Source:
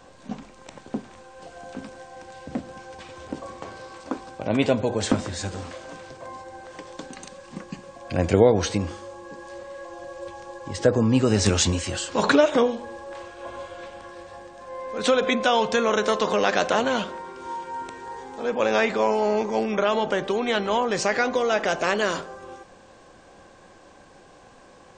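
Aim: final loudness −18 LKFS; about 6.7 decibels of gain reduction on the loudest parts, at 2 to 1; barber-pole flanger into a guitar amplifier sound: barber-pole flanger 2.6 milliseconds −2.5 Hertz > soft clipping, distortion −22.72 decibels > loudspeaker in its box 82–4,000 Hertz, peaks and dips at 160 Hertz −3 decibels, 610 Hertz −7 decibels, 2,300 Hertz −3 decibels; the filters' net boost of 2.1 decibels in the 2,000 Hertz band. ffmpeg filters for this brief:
ffmpeg -i in.wav -filter_complex "[0:a]equalizer=frequency=2000:width_type=o:gain=4,acompressor=threshold=-24dB:ratio=2,asplit=2[link_01][link_02];[link_02]adelay=2.6,afreqshift=-2.5[link_03];[link_01][link_03]amix=inputs=2:normalize=1,asoftclip=threshold=-17dB,highpass=82,equalizer=frequency=160:width_type=q:width=4:gain=-3,equalizer=frequency=610:width_type=q:width=4:gain=-7,equalizer=frequency=2300:width_type=q:width=4:gain=-3,lowpass=frequency=4000:width=0.5412,lowpass=frequency=4000:width=1.3066,volume=16dB" out.wav

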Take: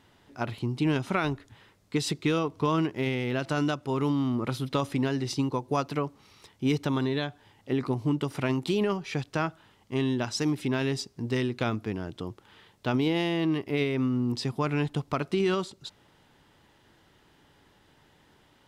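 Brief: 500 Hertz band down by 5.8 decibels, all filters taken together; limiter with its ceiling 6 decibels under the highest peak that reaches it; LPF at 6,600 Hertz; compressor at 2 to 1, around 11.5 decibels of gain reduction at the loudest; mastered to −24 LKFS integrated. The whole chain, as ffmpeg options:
ffmpeg -i in.wav -af "lowpass=6600,equalizer=frequency=500:width_type=o:gain=-8,acompressor=threshold=-46dB:ratio=2,volume=19dB,alimiter=limit=-14dB:level=0:latency=1" out.wav

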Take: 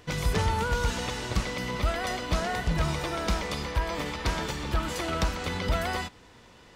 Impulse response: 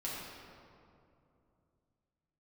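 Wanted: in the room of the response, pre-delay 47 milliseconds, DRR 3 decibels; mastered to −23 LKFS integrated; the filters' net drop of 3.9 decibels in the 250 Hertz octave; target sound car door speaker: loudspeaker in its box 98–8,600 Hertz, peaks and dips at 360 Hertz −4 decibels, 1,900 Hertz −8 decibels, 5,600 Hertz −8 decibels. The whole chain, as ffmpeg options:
-filter_complex "[0:a]equalizer=frequency=250:width_type=o:gain=-4.5,asplit=2[link_01][link_02];[1:a]atrim=start_sample=2205,adelay=47[link_03];[link_02][link_03]afir=irnorm=-1:irlink=0,volume=-5.5dB[link_04];[link_01][link_04]amix=inputs=2:normalize=0,highpass=98,equalizer=frequency=360:width_type=q:width=4:gain=-4,equalizer=frequency=1900:width_type=q:width=4:gain=-8,equalizer=frequency=5600:width_type=q:width=4:gain=-8,lowpass=frequency=8600:width=0.5412,lowpass=frequency=8600:width=1.3066,volume=7.5dB"

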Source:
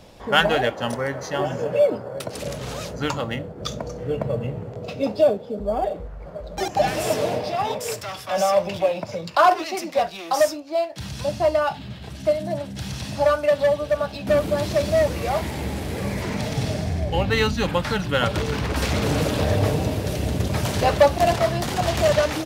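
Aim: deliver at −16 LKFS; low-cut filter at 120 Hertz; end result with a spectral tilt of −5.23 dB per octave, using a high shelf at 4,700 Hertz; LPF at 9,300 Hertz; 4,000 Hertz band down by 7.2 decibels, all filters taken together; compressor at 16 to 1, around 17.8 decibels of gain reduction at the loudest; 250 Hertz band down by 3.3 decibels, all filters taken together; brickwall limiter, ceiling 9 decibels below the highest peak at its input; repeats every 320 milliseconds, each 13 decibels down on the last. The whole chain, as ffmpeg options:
ffmpeg -i in.wav -af "highpass=120,lowpass=9300,equalizer=frequency=250:width_type=o:gain=-4,equalizer=frequency=4000:width_type=o:gain=-8.5,highshelf=frequency=4700:gain=-3,acompressor=threshold=-29dB:ratio=16,alimiter=level_in=1dB:limit=-24dB:level=0:latency=1,volume=-1dB,aecho=1:1:320|640|960:0.224|0.0493|0.0108,volume=19dB" out.wav

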